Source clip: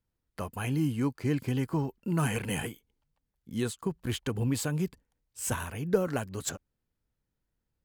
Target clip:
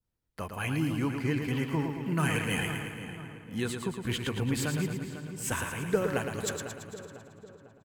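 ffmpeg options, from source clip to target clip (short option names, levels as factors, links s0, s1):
-filter_complex "[0:a]asplit=2[s0][s1];[s1]adelay=499,lowpass=f=3000:p=1,volume=0.299,asplit=2[s2][s3];[s3]adelay=499,lowpass=f=3000:p=1,volume=0.49,asplit=2[s4][s5];[s5]adelay=499,lowpass=f=3000:p=1,volume=0.49,asplit=2[s6][s7];[s7]adelay=499,lowpass=f=3000:p=1,volume=0.49,asplit=2[s8][s9];[s9]adelay=499,lowpass=f=3000:p=1,volume=0.49[s10];[s2][s4][s6][s8][s10]amix=inputs=5:normalize=0[s11];[s0][s11]amix=inputs=2:normalize=0,adynamicequalizer=threshold=0.00251:dfrequency=2100:dqfactor=0.96:tfrequency=2100:tqfactor=0.96:attack=5:release=100:ratio=0.375:range=3.5:mode=boostabove:tftype=bell,asplit=2[s12][s13];[s13]aecho=0:1:112|224|336|448|560|672|784|896:0.473|0.274|0.159|0.0923|0.0535|0.0311|0.018|0.0104[s14];[s12][s14]amix=inputs=2:normalize=0,volume=0.794"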